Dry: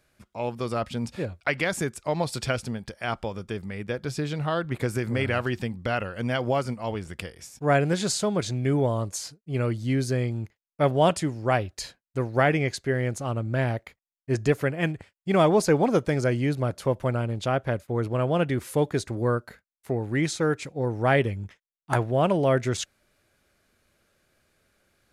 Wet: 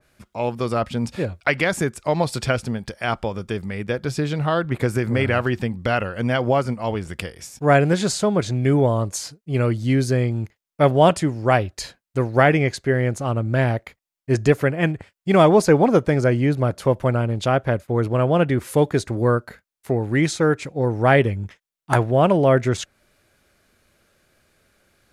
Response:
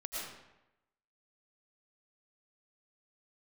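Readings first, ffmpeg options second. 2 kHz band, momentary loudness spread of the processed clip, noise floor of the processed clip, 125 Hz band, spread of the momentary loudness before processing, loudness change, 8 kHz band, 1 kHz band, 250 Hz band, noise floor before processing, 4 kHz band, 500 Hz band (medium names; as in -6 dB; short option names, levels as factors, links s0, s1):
+5.5 dB, 11 LU, -80 dBFS, +6.0 dB, 11 LU, +6.0 dB, +2.5 dB, +6.0 dB, +6.0 dB, under -85 dBFS, +3.5 dB, +6.0 dB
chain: -af "adynamicequalizer=threshold=0.00794:dfrequency=2500:dqfactor=0.7:tfrequency=2500:tqfactor=0.7:attack=5:release=100:ratio=0.375:range=3.5:mode=cutabove:tftype=highshelf,volume=2"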